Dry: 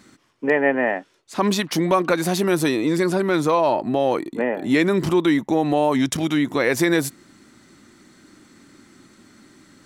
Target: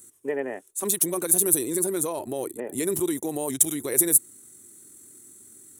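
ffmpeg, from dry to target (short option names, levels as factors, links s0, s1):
-af "equalizer=f=100:t=o:w=0.67:g=11,equalizer=f=400:t=o:w=0.67:g=11,equalizer=f=4000:t=o:w=0.67:g=7,equalizer=f=10000:t=o:w=0.67:g=8,atempo=1.7,aexciter=amount=12.5:drive=9.5:freq=7200,volume=0.168"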